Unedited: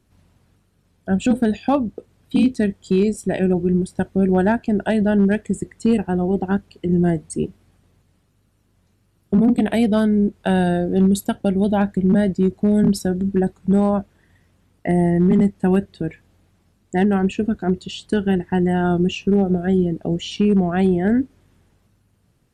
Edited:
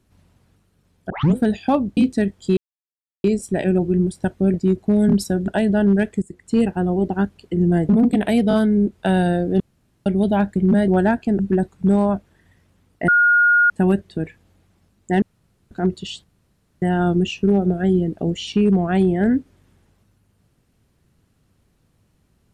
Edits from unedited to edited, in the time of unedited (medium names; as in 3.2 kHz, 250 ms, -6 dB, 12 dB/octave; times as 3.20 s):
1.10 s: tape start 0.26 s
1.97–2.39 s: delete
2.99 s: insert silence 0.67 s
4.29–4.80 s: swap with 12.29–13.23 s
5.54–5.91 s: fade in, from -18.5 dB
7.21–9.34 s: delete
9.94 s: stutter 0.02 s, 3 plays
11.01–11.47 s: room tone
14.92–15.54 s: bleep 1.43 kHz -11 dBFS
17.06–17.55 s: room tone
18.08–18.66 s: room tone